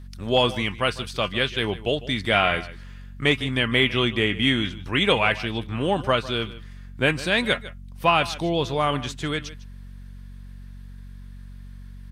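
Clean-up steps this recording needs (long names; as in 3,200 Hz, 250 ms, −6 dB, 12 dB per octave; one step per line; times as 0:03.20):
hum removal 46.7 Hz, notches 5
echo removal 152 ms −17 dB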